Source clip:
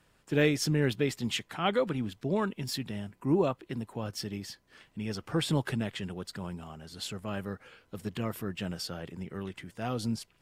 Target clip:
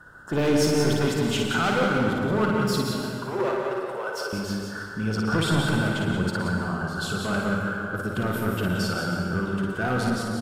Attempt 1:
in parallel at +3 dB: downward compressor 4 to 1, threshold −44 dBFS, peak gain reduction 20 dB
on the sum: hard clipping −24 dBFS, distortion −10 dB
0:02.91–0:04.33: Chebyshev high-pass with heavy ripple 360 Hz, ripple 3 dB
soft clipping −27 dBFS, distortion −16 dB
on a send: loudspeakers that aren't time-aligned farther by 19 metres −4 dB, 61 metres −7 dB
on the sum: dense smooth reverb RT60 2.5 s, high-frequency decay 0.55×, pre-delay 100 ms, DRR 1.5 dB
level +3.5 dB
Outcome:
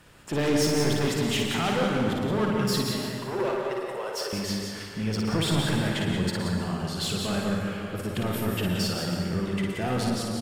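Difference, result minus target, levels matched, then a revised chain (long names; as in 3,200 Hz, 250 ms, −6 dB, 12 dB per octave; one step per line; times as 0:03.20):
soft clipping: distortion +11 dB; 2,000 Hz band −4.0 dB
in parallel at +3 dB: downward compressor 4 to 1, threshold −44 dBFS, peak gain reduction 20 dB + low-pass with resonance 1,500 Hz, resonance Q 15
on the sum: hard clipping −24 dBFS, distortion −10 dB
0:02.91–0:04.33: Chebyshev high-pass with heavy ripple 360 Hz, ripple 3 dB
soft clipping −20 dBFS, distortion −27 dB
on a send: loudspeakers that aren't time-aligned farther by 19 metres −4 dB, 61 metres −7 dB
on the sum: dense smooth reverb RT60 2.5 s, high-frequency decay 0.55×, pre-delay 100 ms, DRR 1.5 dB
level +3.5 dB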